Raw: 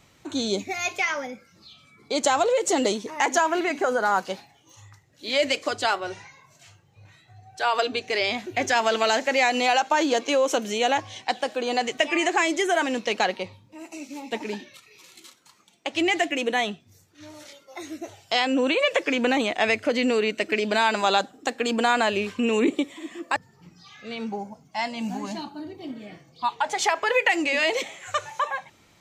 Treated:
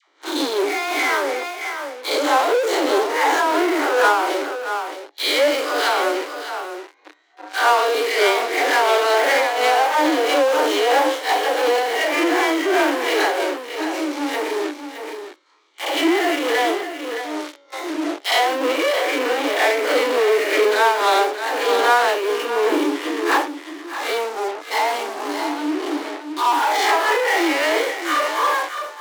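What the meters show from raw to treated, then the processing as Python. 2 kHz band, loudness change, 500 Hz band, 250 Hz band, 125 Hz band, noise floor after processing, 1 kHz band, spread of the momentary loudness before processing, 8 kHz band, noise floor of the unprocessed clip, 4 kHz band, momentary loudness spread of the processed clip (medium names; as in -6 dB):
+5.5 dB, +5.0 dB, +6.5 dB, +4.0 dB, under -20 dB, -44 dBFS, +7.0 dB, 16 LU, +3.0 dB, -59 dBFS, +4.5 dB, 11 LU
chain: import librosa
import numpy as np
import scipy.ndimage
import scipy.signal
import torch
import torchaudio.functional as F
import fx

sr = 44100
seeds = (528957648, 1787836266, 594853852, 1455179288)

p1 = fx.spec_blur(x, sr, span_ms=117.0)
p2 = scipy.signal.sosfilt(scipy.signal.butter(2, 3800.0, 'lowpass', fs=sr, output='sos'), p1)
p3 = fx.notch(p2, sr, hz=2600.0, q=5.8)
p4 = fx.transient(p3, sr, attack_db=11, sustain_db=-2)
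p5 = fx.dispersion(p4, sr, late='lows', ms=85.0, hz=750.0)
p6 = fx.fuzz(p5, sr, gain_db=47.0, gate_db=-44.0)
p7 = p5 + (p6 * 10.0 ** (-9.5 / 20.0))
p8 = scipy.signal.sosfilt(scipy.signal.cheby1(6, 3, 290.0, 'highpass', fs=sr, output='sos'), p7)
p9 = p8 + 10.0 ** (-8.5 / 20.0) * np.pad(p8, (int(619 * sr / 1000.0), 0))[:len(p8)]
p10 = fx.am_noise(p9, sr, seeds[0], hz=5.7, depth_pct=65)
y = p10 * 10.0 ** (6.0 / 20.0)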